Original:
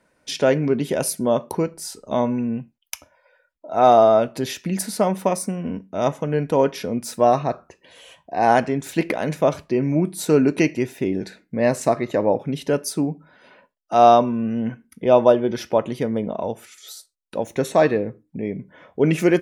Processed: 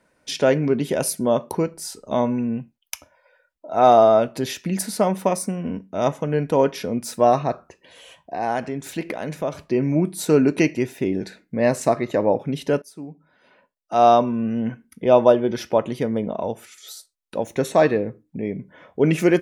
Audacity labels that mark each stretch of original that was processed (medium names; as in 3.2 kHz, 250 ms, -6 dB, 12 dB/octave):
8.360000	9.620000	compression 1.5:1, threshold -33 dBFS
12.820000	14.410000	fade in, from -20.5 dB